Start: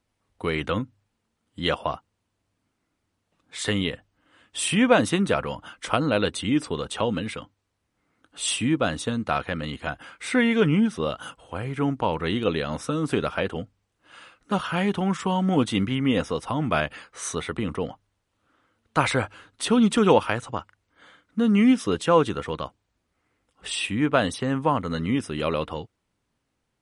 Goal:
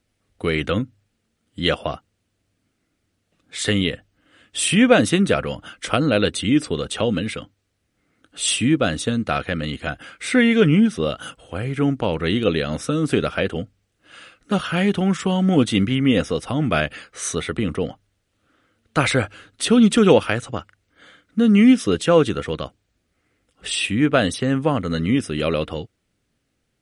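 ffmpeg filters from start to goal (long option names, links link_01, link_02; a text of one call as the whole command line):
ffmpeg -i in.wav -af "equalizer=frequency=960:width=2.5:gain=-11,volume=5.5dB" out.wav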